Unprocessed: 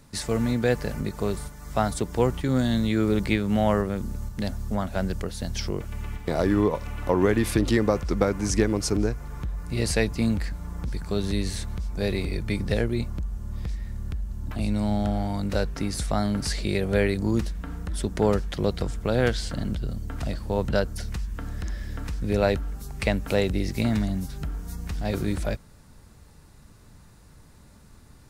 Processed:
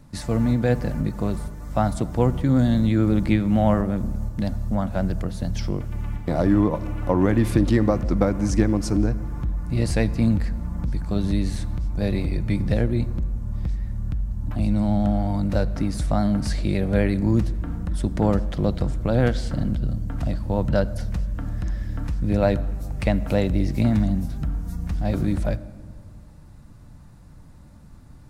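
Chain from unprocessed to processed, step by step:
tilt shelving filter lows +5.5 dB, about 1,100 Hz
pitch vibrato 11 Hz 30 cents
parametric band 420 Hz −12.5 dB 0.22 octaves
convolution reverb RT60 1.8 s, pre-delay 7 ms, DRR 15 dB

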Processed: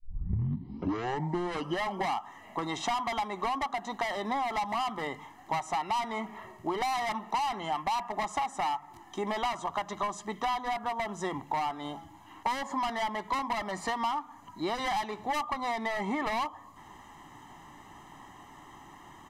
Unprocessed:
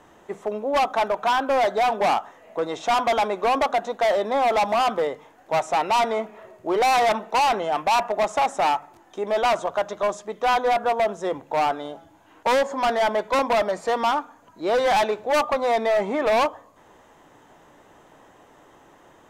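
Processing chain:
turntable start at the beginning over 2.15 s
parametric band 650 Hz −7.5 dB 0.23 octaves
comb filter 1 ms, depth 81%
downward compressor 10 to 1, threshold −28 dBFS, peak gain reduction 14.5 dB

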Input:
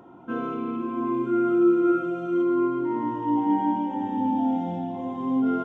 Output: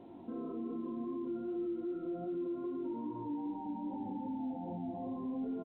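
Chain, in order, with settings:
chorus effect 2.5 Hz, delay 18 ms, depth 3.7 ms
downward compressor 3 to 1, threshold −32 dBFS, peak gain reduction 11.5 dB
brickwall limiter −32.5 dBFS, peak gain reduction 9 dB
Bessel low-pass filter 590 Hz, order 6
parametric band 140 Hz −14 dB 0.24 octaves
echo with shifted repeats 339 ms, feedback 51%, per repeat −73 Hz, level −23 dB
level +2 dB
A-law companding 64 kbit/s 8,000 Hz

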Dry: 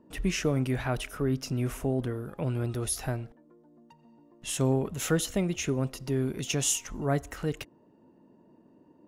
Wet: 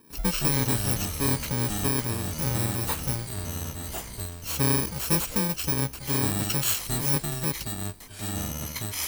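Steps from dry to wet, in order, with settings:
samples in bit-reversed order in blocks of 64 samples
delay with pitch and tempo change per echo 83 ms, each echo −5 semitones, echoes 3, each echo −6 dB
level +2 dB

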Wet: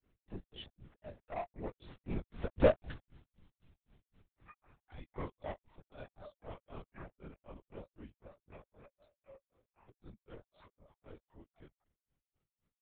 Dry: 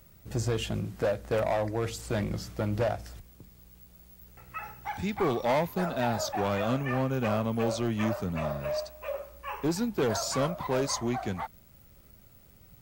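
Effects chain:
source passing by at 0:02.70, 21 m/s, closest 7.4 metres
granular cloud 190 ms, grains 3.9 per second, spray 15 ms, pitch spread up and down by 0 semitones
linear-prediction vocoder at 8 kHz whisper
level +4 dB

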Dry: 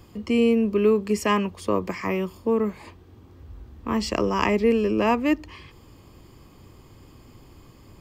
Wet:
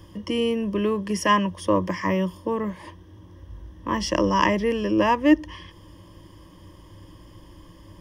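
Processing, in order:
EQ curve with evenly spaced ripples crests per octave 1.2, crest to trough 13 dB

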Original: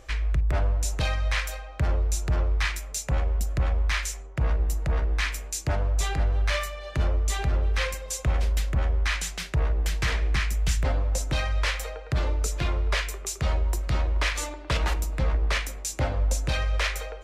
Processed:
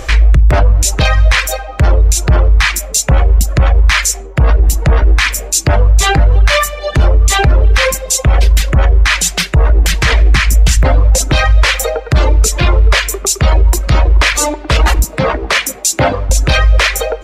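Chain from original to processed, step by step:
0:15.04–0:16.30: high-pass filter 140 Hz 12 dB per octave
reverb reduction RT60 0.94 s
boost into a limiter +25 dB
level −1 dB

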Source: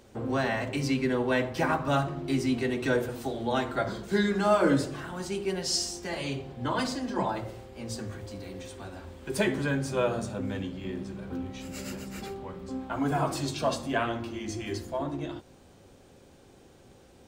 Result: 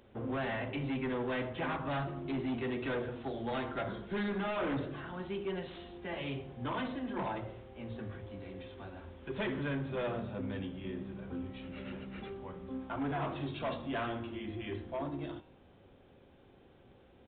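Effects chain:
gain into a clipping stage and back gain 26.5 dB
hum removal 157.2 Hz, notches 31
downsampling to 8,000 Hz
level −5 dB

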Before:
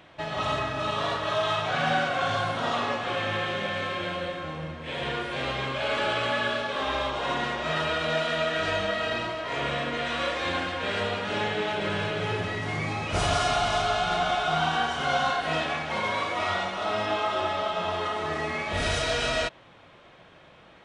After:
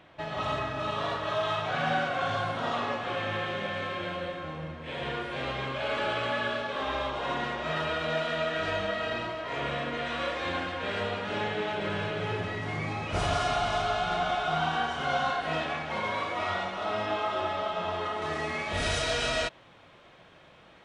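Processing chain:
high-shelf EQ 4,100 Hz −6.5 dB, from 0:18.22 +2.5 dB
level −2.5 dB

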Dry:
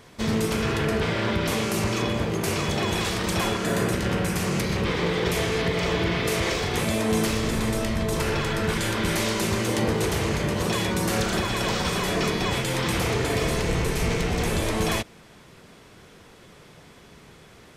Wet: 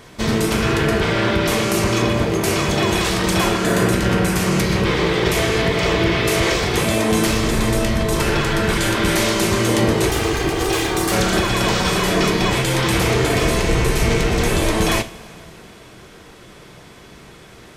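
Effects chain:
0:10.09–0:11.12: lower of the sound and its delayed copy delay 2.5 ms
coupled-rooms reverb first 0.3 s, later 3.2 s, from −19 dB, DRR 8.5 dB
level +6.5 dB

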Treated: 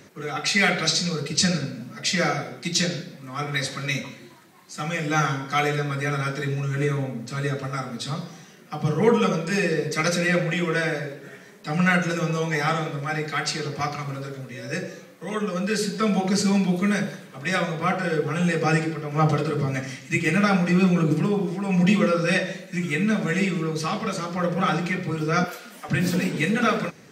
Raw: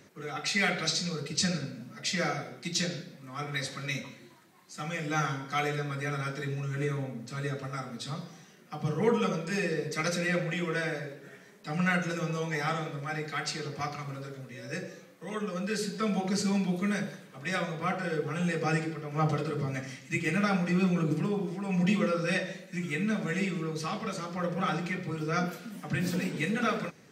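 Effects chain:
0:25.44–0:25.89: high-pass filter 490 Hz 12 dB per octave
level +7.5 dB

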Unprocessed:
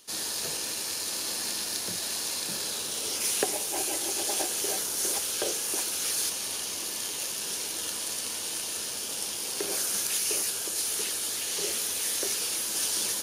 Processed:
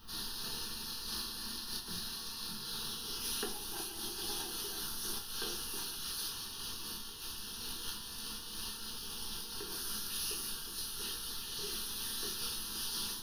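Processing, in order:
notch filter 530 Hz, Q 12
background noise pink −49 dBFS
phaser with its sweep stopped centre 2,200 Hz, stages 6
rectangular room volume 140 cubic metres, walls furnished, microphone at 1.6 metres
amplitude modulation by smooth noise, depth 60%
level −5.5 dB

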